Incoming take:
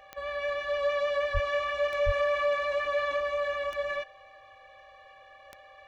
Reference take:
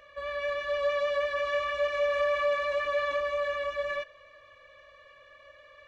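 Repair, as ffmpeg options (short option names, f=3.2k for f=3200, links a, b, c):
-filter_complex "[0:a]adeclick=t=4,bandreject=f=780:w=30,asplit=3[a][b][c];[a]afade=t=out:st=1.33:d=0.02[d];[b]highpass=f=140:w=0.5412,highpass=f=140:w=1.3066,afade=t=in:st=1.33:d=0.02,afade=t=out:st=1.45:d=0.02[e];[c]afade=t=in:st=1.45:d=0.02[f];[d][e][f]amix=inputs=3:normalize=0,asplit=3[g][h][i];[g]afade=t=out:st=2.05:d=0.02[j];[h]highpass=f=140:w=0.5412,highpass=f=140:w=1.3066,afade=t=in:st=2.05:d=0.02,afade=t=out:st=2.17:d=0.02[k];[i]afade=t=in:st=2.17:d=0.02[l];[j][k][l]amix=inputs=3:normalize=0"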